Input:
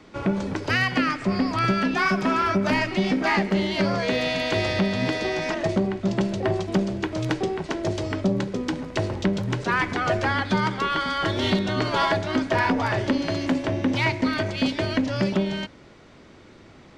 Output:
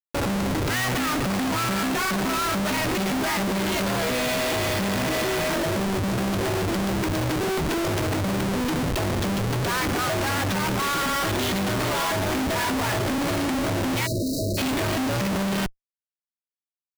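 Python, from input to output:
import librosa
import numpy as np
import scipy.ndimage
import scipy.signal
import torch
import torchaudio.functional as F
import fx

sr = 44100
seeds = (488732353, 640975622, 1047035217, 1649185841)

y = fx.schmitt(x, sr, flips_db=-35.5)
y = fx.spec_erase(y, sr, start_s=14.07, length_s=0.51, low_hz=670.0, high_hz=3800.0)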